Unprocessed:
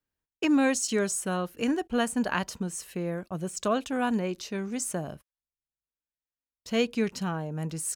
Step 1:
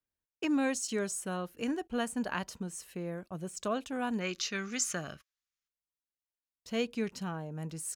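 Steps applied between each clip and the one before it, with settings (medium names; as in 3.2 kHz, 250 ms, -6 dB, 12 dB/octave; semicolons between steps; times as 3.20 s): time-frequency box 4.21–5.68 s, 1.1–7.4 kHz +12 dB; trim -6.5 dB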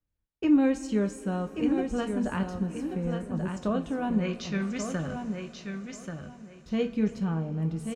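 RIAA curve playback; on a send: feedback delay 1135 ms, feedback 21%, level -6.5 dB; on the sum: two-slope reverb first 0.25 s, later 5 s, from -21 dB, DRR 5.5 dB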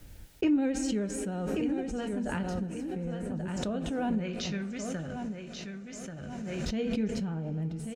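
peaking EQ 1.1 kHz -13.5 dB 0.21 oct; vibrato 13 Hz 30 cents; swell ahead of each attack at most 20 dB/s; trim -5.5 dB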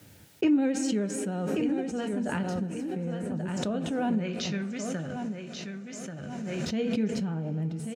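high-pass 100 Hz 24 dB/octave; trim +2.5 dB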